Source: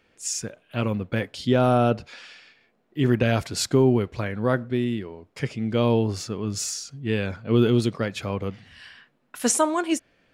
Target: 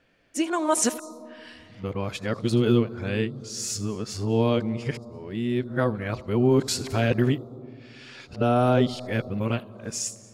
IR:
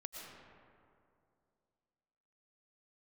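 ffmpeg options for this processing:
-filter_complex "[0:a]areverse,asplit=2[s0][s1];[s1]asuperstop=centerf=2200:order=20:qfactor=0.96[s2];[1:a]atrim=start_sample=2205,adelay=79[s3];[s2][s3]afir=irnorm=-1:irlink=0,volume=0.251[s4];[s0][s4]amix=inputs=2:normalize=0,volume=0.841"

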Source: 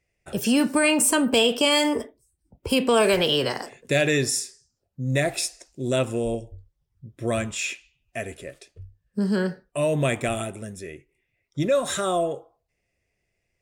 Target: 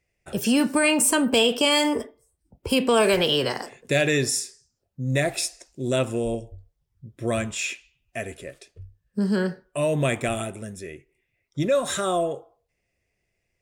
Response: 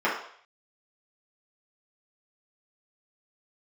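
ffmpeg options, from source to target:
-filter_complex "[0:a]asplit=2[s0][s1];[1:a]atrim=start_sample=2205[s2];[s1][s2]afir=irnorm=-1:irlink=0,volume=0.0126[s3];[s0][s3]amix=inputs=2:normalize=0"

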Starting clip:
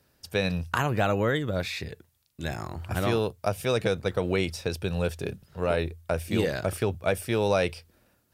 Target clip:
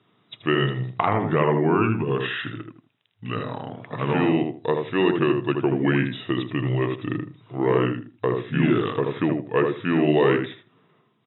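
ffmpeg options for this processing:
-filter_complex "[0:a]bandreject=f=730:w=12,asetrate=32634,aresample=44100,afftfilt=real='re*between(b*sr/4096,100,3900)':imag='im*between(b*sr/4096,100,3900)':win_size=4096:overlap=0.75,asplit=2[s0][s1];[s1]adelay=79,lowpass=f=1300:p=1,volume=0.668,asplit=2[s2][s3];[s3]adelay=79,lowpass=f=1300:p=1,volume=0.23,asplit=2[s4][s5];[s5]adelay=79,lowpass=f=1300:p=1,volume=0.23[s6];[s2][s4][s6]amix=inputs=3:normalize=0[s7];[s0][s7]amix=inputs=2:normalize=0,volume=1.68"

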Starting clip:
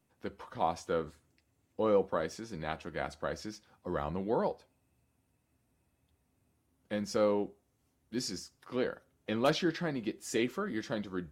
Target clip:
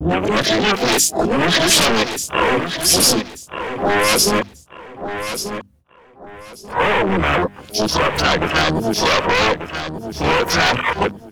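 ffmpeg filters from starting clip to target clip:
-filter_complex "[0:a]areverse,lowshelf=f=64:g=7,acrossover=split=680[s0][s1];[s1]aeval=exprs='(mod(14.1*val(0)+1,2)-1)/14.1':c=same[s2];[s0][s2]amix=inputs=2:normalize=0,apsyclip=39.8,asplit=3[s3][s4][s5];[s4]asetrate=52444,aresample=44100,atempo=0.840896,volume=0.141[s6];[s5]asetrate=88200,aresample=44100,atempo=0.5,volume=0.891[s7];[s3][s6][s7]amix=inputs=3:normalize=0,aeval=exprs='0.944*(abs(mod(val(0)/0.944+3,4)-2)-1)':c=same,acompressor=threshold=0.282:ratio=8,afwtdn=0.0708,bandreject=f=50:t=h:w=6,bandreject=f=100:t=h:w=6,bandreject=f=150:t=h:w=6,bandreject=f=200:t=h:w=6,bandreject=f=250:t=h:w=6,bandreject=f=300:t=h:w=6,agate=range=0.00398:threshold=0.0126:ratio=16:detection=peak,aecho=1:1:1187|2374|3561:0.355|0.0993|0.0278,adynamicequalizer=threshold=0.0398:dfrequency=1700:dqfactor=0.7:tfrequency=1700:tqfactor=0.7:attack=5:release=100:ratio=0.375:range=3:mode=boostabove:tftype=highshelf,volume=0.668"

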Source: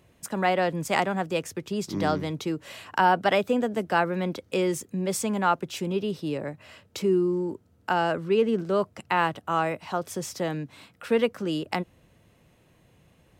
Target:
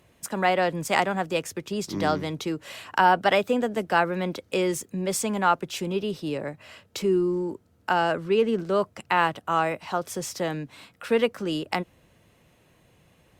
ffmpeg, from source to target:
-af "lowshelf=f=410:g=-4,volume=1.33" -ar 48000 -c:a libopus -b:a 64k

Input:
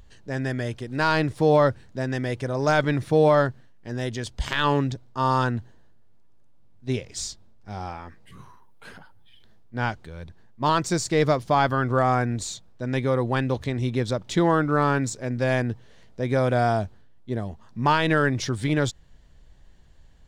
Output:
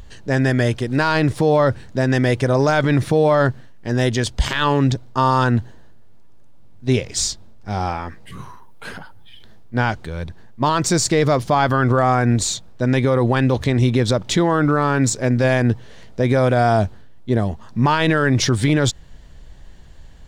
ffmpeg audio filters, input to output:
-af "alimiter=level_in=7.5:limit=0.891:release=50:level=0:latency=1,volume=0.473"

